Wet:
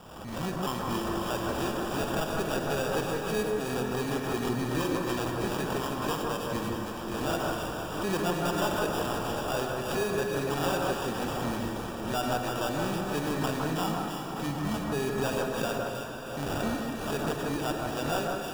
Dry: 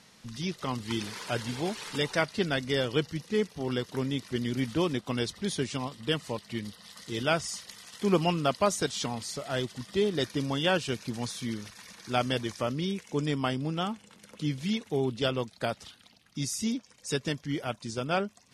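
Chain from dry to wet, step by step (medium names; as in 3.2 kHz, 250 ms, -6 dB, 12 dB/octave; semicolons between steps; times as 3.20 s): bass shelf 420 Hz -8 dB; in parallel at +3 dB: gain riding 0.5 s; on the sum: sample-and-hold 21×; saturation -18 dBFS, distortion -14 dB; echo whose repeats swap between lows and highs 159 ms, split 1.8 kHz, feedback 60%, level -2 dB; on a send at -3 dB: reverberation RT60 4.6 s, pre-delay 23 ms; on the sum: swell ahead of each attack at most 46 dB/s; trim -6 dB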